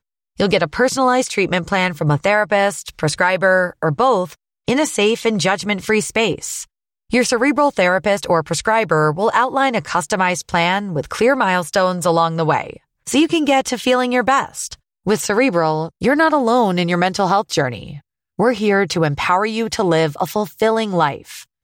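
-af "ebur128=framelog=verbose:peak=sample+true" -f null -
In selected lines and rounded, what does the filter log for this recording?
Integrated loudness:
  I:         -17.0 LUFS
  Threshold: -27.3 LUFS
Loudness range:
  LRA:         1.5 LU
  Threshold: -37.3 LUFS
  LRA low:   -18.0 LUFS
  LRA high:  -16.5 LUFS
Sample peak:
  Peak:       -1.8 dBFS
True peak:
  Peak:       -1.8 dBFS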